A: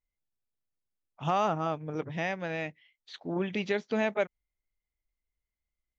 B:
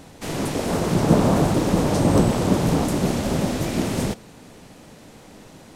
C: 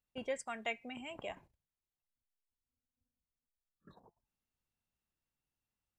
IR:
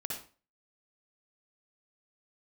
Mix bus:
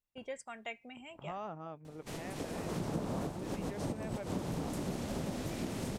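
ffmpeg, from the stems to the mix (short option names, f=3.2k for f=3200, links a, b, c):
-filter_complex "[0:a]highshelf=f=2.6k:g=-10.5,volume=-13.5dB,asplit=2[a][b];[1:a]adelay=1850,volume=-12dB[c];[2:a]volume=-4dB[d];[b]apad=whole_len=335279[e];[c][e]sidechaincompress=threshold=-51dB:ratio=10:attack=29:release=107[f];[a][f][d]amix=inputs=3:normalize=0,acompressor=threshold=-34dB:ratio=4"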